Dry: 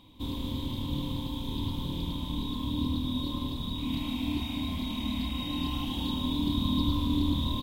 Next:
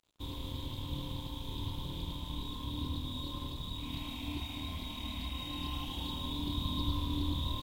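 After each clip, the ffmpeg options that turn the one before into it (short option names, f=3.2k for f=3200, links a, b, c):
-af "equalizer=f=230:t=o:w=0.61:g=-11,aeval=exprs='sgn(val(0))*max(abs(val(0))-0.00251,0)':c=same,volume=-3.5dB"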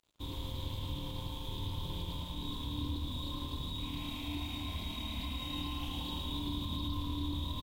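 -af "alimiter=level_in=5.5dB:limit=-24dB:level=0:latency=1:release=65,volume=-5.5dB,aecho=1:1:113:0.562"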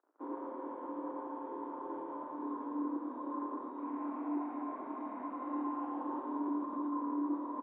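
-af "flanger=delay=2.4:depth=7.5:regen=-59:speed=1.6:shape=sinusoidal,asuperpass=centerf=670:order=12:qfactor=0.51,volume=11.5dB"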